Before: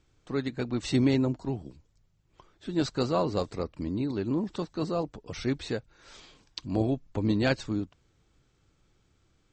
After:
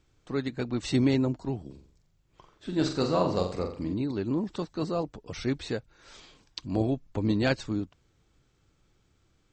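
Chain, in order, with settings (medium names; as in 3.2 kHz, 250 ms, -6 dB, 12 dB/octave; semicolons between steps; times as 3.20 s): 1.65–3.94 s: flutter echo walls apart 7.5 m, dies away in 0.47 s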